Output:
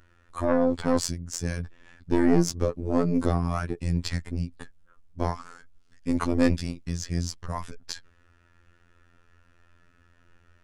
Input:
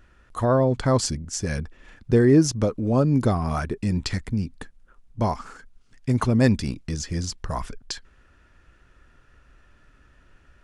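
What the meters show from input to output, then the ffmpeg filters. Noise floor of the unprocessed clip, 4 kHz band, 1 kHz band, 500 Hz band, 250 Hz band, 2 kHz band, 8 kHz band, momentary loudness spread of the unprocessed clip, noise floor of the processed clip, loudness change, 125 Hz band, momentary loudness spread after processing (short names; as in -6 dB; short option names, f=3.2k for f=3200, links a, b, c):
-58 dBFS, -3.5 dB, -4.0 dB, -4.0 dB, -3.0 dB, -3.5 dB, -4.0 dB, 16 LU, -62 dBFS, -4.0 dB, -6.5 dB, 14 LU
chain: -af "aeval=exprs='(tanh(3.98*val(0)+0.7)-tanh(0.7))/3.98':c=same,afftfilt=real='hypot(re,im)*cos(PI*b)':imag='0':win_size=2048:overlap=0.75,volume=3.5dB"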